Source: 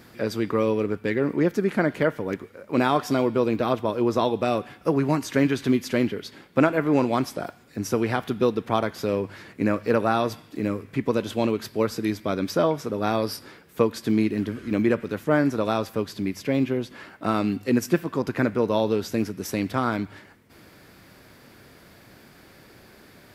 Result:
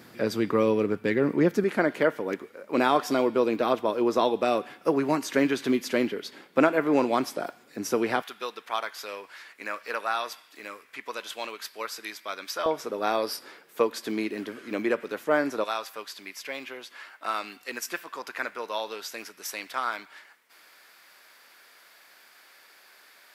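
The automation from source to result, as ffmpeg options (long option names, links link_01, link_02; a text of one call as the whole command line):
ffmpeg -i in.wav -af "asetnsamples=nb_out_samples=441:pad=0,asendcmd='1.64 highpass f 280;8.22 highpass f 1100;12.66 highpass f 430;15.64 highpass f 1000',highpass=130" out.wav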